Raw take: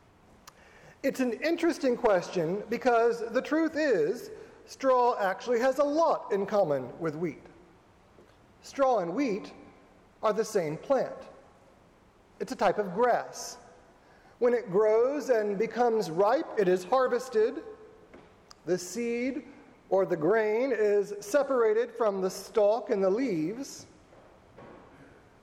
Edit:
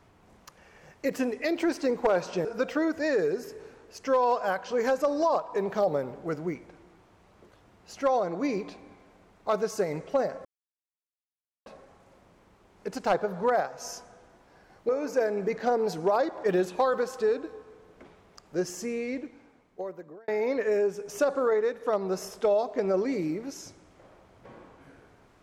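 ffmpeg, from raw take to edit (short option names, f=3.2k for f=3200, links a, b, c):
-filter_complex "[0:a]asplit=5[a][b][c][d][e];[a]atrim=end=2.452[f];[b]atrim=start=3.208:end=11.21,asetpts=PTS-STARTPTS,afade=t=out:st=7.998:d=0.004:c=hsin,apad=pad_dur=1.21[g];[c]atrim=start=11.21:end=14.442,asetpts=PTS-STARTPTS,afade=t=in:d=0.004:c=hsin[h];[d]atrim=start=15.018:end=20.41,asetpts=PTS-STARTPTS,afade=t=out:st=3.902:d=1.49[i];[e]atrim=start=20.41,asetpts=PTS-STARTPTS,afade=t=in:d=0.004:c=hsin[j];[g][h]concat=n=2:v=0:a=1[k];[f][k]acrossfade=d=0.004:c1=hsin:c2=hsin[l];[i][j]concat=n=2:v=0:a=1[m];[l][m]acrossfade=d=0.004:c1=hsin:c2=hsin"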